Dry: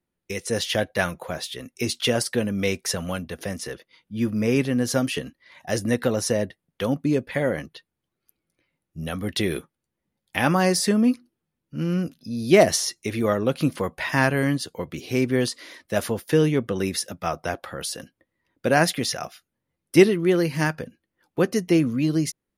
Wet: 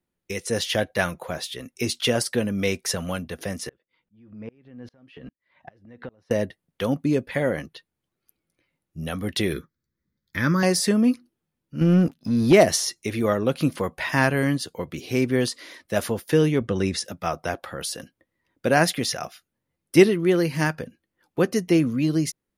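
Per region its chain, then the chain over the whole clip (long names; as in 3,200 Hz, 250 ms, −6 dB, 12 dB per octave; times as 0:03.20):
0:03.69–0:06.31: downward compressor 16 to 1, threshold −28 dBFS + high-frequency loss of the air 350 metres + tremolo with a ramp in dB swelling 2.5 Hz, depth 29 dB
0:09.53–0:10.63: parametric band 66 Hz +5 dB 2.6 octaves + phaser with its sweep stopped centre 2,800 Hz, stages 6
0:11.81–0:12.53: leveller curve on the samples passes 2 + high-shelf EQ 2,500 Hz −8.5 dB
0:16.61–0:17.05: low-pass filter 8,800 Hz 24 dB per octave + low-shelf EQ 120 Hz +8.5 dB
whole clip: no processing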